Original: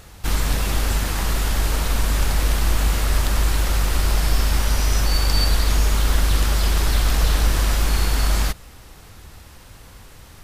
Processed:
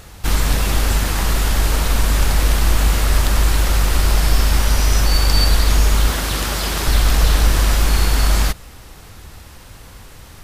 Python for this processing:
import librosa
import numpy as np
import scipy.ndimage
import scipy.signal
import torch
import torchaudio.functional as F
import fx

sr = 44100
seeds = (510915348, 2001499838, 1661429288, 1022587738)

y = fx.highpass(x, sr, hz=140.0, slope=6, at=(6.1, 6.87))
y = y * librosa.db_to_amplitude(4.0)